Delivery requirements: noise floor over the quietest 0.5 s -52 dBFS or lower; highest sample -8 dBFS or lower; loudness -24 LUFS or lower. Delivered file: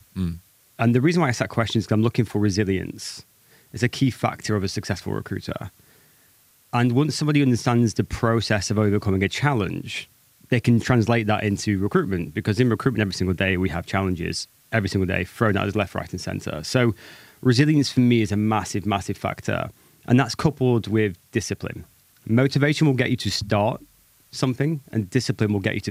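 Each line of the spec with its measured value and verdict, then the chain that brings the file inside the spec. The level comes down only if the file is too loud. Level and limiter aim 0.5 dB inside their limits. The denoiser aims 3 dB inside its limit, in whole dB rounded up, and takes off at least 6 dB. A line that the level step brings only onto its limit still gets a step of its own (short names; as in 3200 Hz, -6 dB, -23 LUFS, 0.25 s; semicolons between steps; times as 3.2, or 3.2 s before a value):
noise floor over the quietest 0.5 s -58 dBFS: OK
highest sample -5.0 dBFS: fail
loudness -22.5 LUFS: fail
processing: gain -2 dB; limiter -8.5 dBFS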